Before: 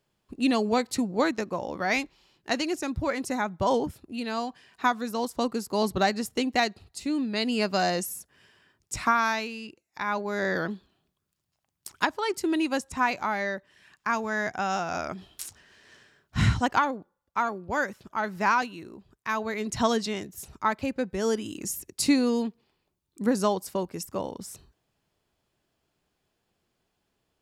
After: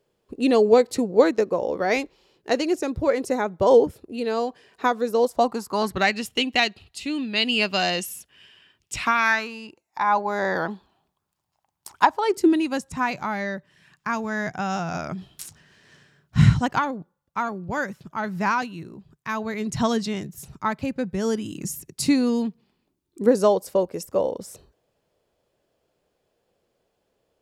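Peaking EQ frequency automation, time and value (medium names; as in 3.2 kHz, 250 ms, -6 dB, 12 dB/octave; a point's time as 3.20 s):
peaking EQ +13.5 dB 0.79 oct
5.18 s 460 Hz
6.21 s 2.9 kHz
9.14 s 2.9 kHz
9.57 s 870 Hz
12.15 s 870 Hz
12.66 s 150 Hz
22.48 s 150 Hz
23.43 s 520 Hz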